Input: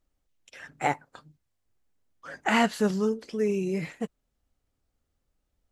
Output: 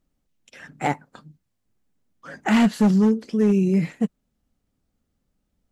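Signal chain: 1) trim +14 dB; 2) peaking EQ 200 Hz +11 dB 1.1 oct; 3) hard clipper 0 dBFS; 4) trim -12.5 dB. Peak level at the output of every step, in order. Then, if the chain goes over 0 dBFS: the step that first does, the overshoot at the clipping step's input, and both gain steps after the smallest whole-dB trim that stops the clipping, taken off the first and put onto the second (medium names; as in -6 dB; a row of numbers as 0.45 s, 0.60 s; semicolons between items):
+4.0 dBFS, +7.5 dBFS, 0.0 dBFS, -12.5 dBFS; step 1, 7.5 dB; step 1 +6 dB, step 4 -4.5 dB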